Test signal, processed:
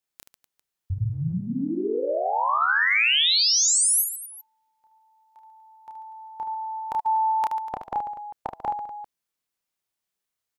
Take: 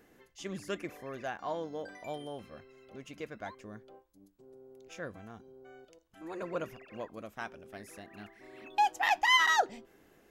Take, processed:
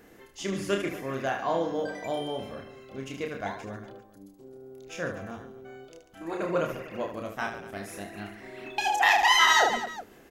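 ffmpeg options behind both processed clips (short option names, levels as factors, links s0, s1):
-af "aecho=1:1:30|75|142.5|243.8|395.6:0.631|0.398|0.251|0.158|0.1,afftfilt=real='re*lt(hypot(re,im),0.501)':imag='im*lt(hypot(re,im),0.501)':win_size=1024:overlap=0.75,acontrast=75"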